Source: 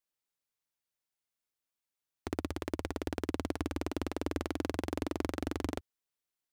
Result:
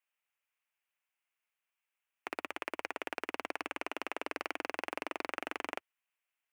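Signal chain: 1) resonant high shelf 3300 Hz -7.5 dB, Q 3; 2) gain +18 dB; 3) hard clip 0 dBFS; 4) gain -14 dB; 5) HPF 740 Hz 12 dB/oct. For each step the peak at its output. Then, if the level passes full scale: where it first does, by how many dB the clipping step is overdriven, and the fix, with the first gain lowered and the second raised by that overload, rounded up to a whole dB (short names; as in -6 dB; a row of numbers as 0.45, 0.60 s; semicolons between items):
-15.0, +3.0, 0.0, -14.0, -18.0 dBFS; step 2, 3.0 dB; step 2 +15 dB, step 4 -11 dB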